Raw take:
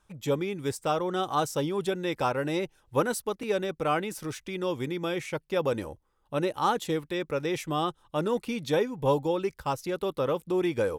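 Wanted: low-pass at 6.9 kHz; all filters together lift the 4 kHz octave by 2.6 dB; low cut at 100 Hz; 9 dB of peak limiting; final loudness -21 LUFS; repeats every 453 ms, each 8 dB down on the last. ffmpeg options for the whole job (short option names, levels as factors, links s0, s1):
-af "highpass=100,lowpass=6900,equalizer=f=4000:t=o:g=3.5,alimiter=limit=0.0841:level=0:latency=1,aecho=1:1:453|906|1359|1812|2265:0.398|0.159|0.0637|0.0255|0.0102,volume=3.35"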